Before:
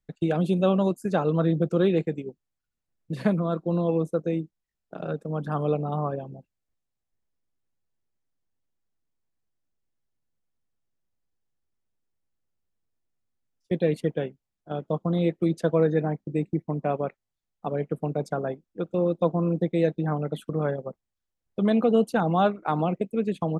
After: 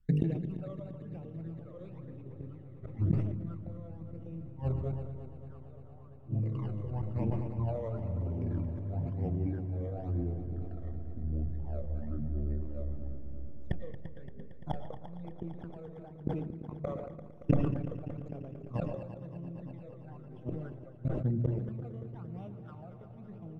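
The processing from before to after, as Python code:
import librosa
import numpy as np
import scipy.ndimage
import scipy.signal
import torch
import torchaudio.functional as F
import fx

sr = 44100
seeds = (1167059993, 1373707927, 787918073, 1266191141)

p1 = scipy.ndimage.median_filter(x, 9, mode='constant')
p2 = fx.low_shelf(p1, sr, hz=250.0, db=10.0)
p3 = fx.hum_notches(p2, sr, base_hz=50, count=10)
p4 = fx.env_lowpass_down(p3, sr, base_hz=2500.0, full_db=-17.0)
p5 = np.clip(p4, -10.0 ** (-22.0 / 20.0), 10.0 ** (-22.0 / 20.0))
p6 = p4 + (p5 * 10.0 ** (-5.5 / 20.0))
p7 = fx.echo_pitch(p6, sr, ms=220, semitones=-4, count=3, db_per_echo=-6.0)
p8 = fx.gate_flip(p7, sr, shuts_db=-17.0, range_db=-31)
p9 = fx.rider(p8, sr, range_db=4, speed_s=0.5)
p10 = fx.phaser_stages(p9, sr, stages=12, low_hz=260.0, high_hz=1500.0, hz=0.99, feedback_pct=45)
p11 = p10 + fx.echo_heads(p10, sr, ms=114, heads='second and third', feedback_pct=73, wet_db=-12.5, dry=0)
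p12 = fx.rev_freeverb(p11, sr, rt60_s=1.1, hf_ratio=0.3, predelay_ms=80, drr_db=15.5)
p13 = fx.sustainer(p12, sr, db_per_s=43.0)
y = p13 * 10.0 ** (-1.5 / 20.0)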